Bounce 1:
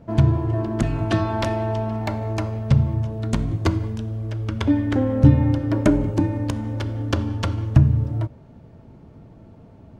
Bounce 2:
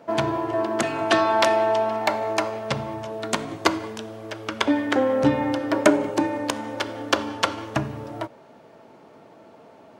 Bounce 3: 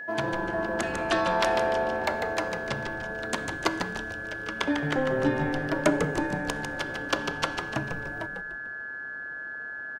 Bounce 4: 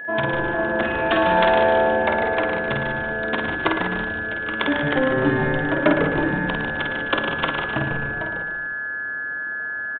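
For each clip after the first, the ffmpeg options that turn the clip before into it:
-af "highpass=520,volume=8dB"
-filter_complex "[0:a]aeval=exprs='val(0)+0.0355*sin(2*PI*1700*n/s)':c=same,asplit=2[a][b];[b]asplit=5[c][d][e][f][g];[c]adelay=148,afreqshift=-140,volume=-6dB[h];[d]adelay=296,afreqshift=-280,volume=-13.5dB[i];[e]adelay=444,afreqshift=-420,volume=-21.1dB[j];[f]adelay=592,afreqshift=-560,volume=-28.6dB[k];[g]adelay=740,afreqshift=-700,volume=-36.1dB[l];[h][i][j][k][l]amix=inputs=5:normalize=0[m];[a][m]amix=inputs=2:normalize=0,volume=-6.5dB"
-af "aresample=8000,aresample=44100,aecho=1:1:50|110|182|268.4|372.1:0.631|0.398|0.251|0.158|0.1,volume=4.5dB"

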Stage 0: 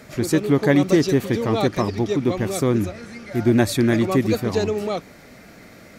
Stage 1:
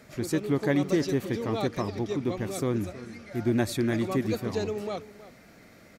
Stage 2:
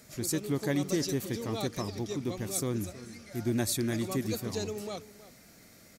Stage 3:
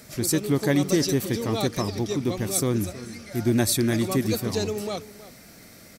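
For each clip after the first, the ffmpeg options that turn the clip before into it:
-filter_complex "[0:a]asplit=2[a][b];[b]adelay=320.7,volume=-16dB,highshelf=f=4k:g=-7.22[c];[a][c]amix=inputs=2:normalize=0,volume=-8.5dB"
-af "bass=f=250:g=3,treble=f=4k:g=14,volume=-6dB"
-af "bandreject=f=6.8k:w=13,volume=8dB"

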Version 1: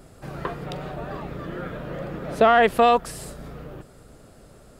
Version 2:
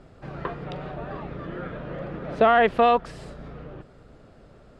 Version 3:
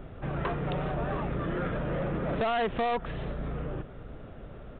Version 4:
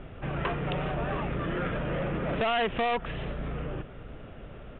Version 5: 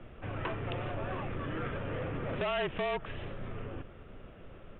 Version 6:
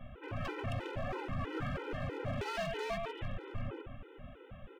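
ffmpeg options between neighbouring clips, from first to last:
-af "lowpass=3.6k,volume=-1.5dB"
-af "lowshelf=f=91:g=6,acompressor=threshold=-23dB:ratio=6,aresample=8000,asoftclip=type=tanh:threshold=-29dB,aresample=44100,volume=4.5dB"
-af "lowpass=f=2.9k:t=q:w=2.2"
-af "afreqshift=-39,volume=-5.5dB"
-filter_complex "[0:a]asplit=2[a][b];[b]aecho=0:1:140:0.398[c];[a][c]amix=inputs=2:normalize=0,asoftclip=type=hard:threshold=-33dB,afftfilt=real='re*gt(sin(2*PI*3.1*pts/sr)*(1-2*mod(floor(b*sr/1024/260),2)),0)':imag='im*gt(sin(2*PI*3.1*pts/sr)*(1-2*mod(floor(b*sr/1024/260),2)),0)':win_size=1024:overlap=0.75,volume=2dB"

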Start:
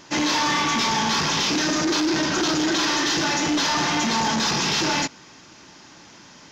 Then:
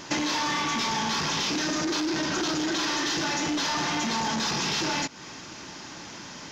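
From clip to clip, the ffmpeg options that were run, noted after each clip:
-af "acompressor=threshold=-31dB:ratio=10,volume=5.5dB"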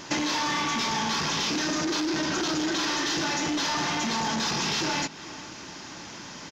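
-filter_complex "[0:a]asplit=2[a][b];[b]adelay=437.3,volume=-16dB,highshelf=f=4k:g=-9.84[c];[a][c]amix=inputs=2:normalize=0"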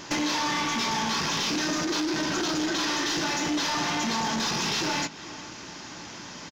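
-filter_complex "[0:a]aeval=exprs='clip(val(0),-1,0.0631)':c=same,asplit=2[a][b];[b]adelay=17,volume=-13dB[c];[a][c]amix=inputs=2:normalize=0"

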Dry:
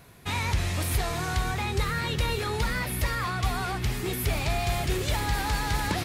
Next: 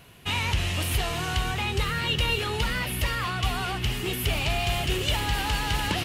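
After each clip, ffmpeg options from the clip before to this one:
-af "equalizer=f=2.9k:t=o:w=0.29:g=13.5"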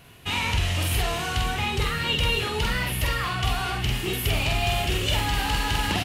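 -filter_complex "[0:a]asplit=2[a][b];[b]adelay=47,volume=-3dB[c];[a][c]amix=inputs=2:normalize=0"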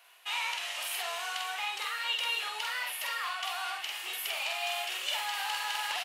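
-af "highpass=f=700:w=0.5412,highpass=f=700:w=1.3066,volume=-6dB"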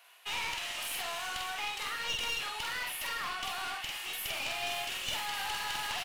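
-af "aeval=exprs='clip(val(0),-1,0.0141)':c=same"

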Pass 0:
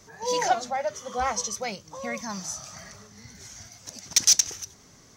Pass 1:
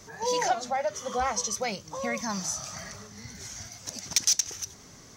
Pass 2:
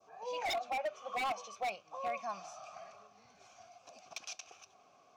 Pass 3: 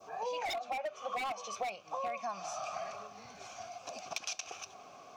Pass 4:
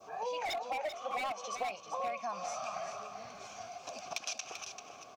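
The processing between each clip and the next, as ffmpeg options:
-af "acompressor=threshold=-31dB:ratio=2,volume=3.5dB"
-filter_complex "[0:a]asplit=3[a][b][c];[a]bandpass=f=730:t=q:w=8,volume=0dB[d];[b]bandpass=f=1.09k:t=q:w=8,volume=-6dB[e];[c]bandpass=f=2.44k:t=q:w=8,volume=-9dB[f];[d][e][f]amix=inputs=3:normalize=0,adynamicequalizer=threshold=0.00251:dfrequency=2200:dqfactor=0.8:tfrequency=2200:tqfactor=0.8:attack=5:release=100:ratio=0.375:range=3:mode=boostabove:tftype=bell,aeval=exprs='0.0282*(abs(mod(val(0)/0.0282+3,4)-2)-1)':c=same,volume=1.5dB"
-af "acompressor=threshold=-46dB:ratio=10,volume=11.5dB"
-af "aecho=1:1:390:0.376"

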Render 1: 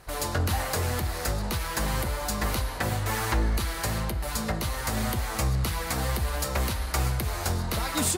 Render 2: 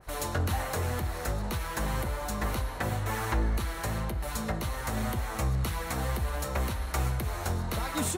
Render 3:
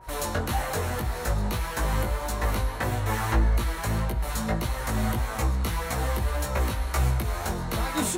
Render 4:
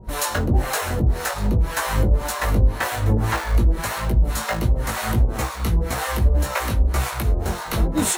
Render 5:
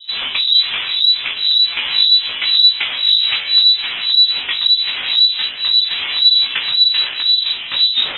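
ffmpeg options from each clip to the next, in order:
-af "bandreject=f=4.8k:w=9.6,adynamicequalizer=threshold=0.00708:dfrequency=2200:dqfactor=0.7:tfrequency=2200:tqfactor=0.7:attack=5:release=100:ratio=0.375:range=2.5:mode=cutabove:tftype=highshelf,volume=-2.5dB"
-af "aeval=exprs='val(0)+0.00282*sin(2*PI*950*n/s)':c=same,flanger=delay=16.5:depth=2.8:speed=1.7,volume=6.5dB"
-filter_complex "[0:a]asplit=2[a][b];[b]acrusher=samples=38:mix=1:aa=0.000001,volume=-7.5dB[c];[a][c]amix=inputs=2:normalize=0,acrossover=split=590[d][e];[d]aeval=exprs='val(0)*(1-1/2+1/2*cos(2*PI*1.9*n/s))':c=same[f];[e]aeval=exprs='val(0)*(1-1/2-1/2*cos(2*PI*1.9*n/s))':c=same[g];[f][g]amix=inputs=2:normalize=0,volume=9dB"
-af "lowpass=f=3.4k:t=q:w=0.5098,lowpass=f=3.4k:t=q:w=0.6013,lowpass=f=3.4k:t=q:w=0.9,lowpass=f=3.4k:t=q:w=2.563,afreqshift=-4000,volume=4.5dB"

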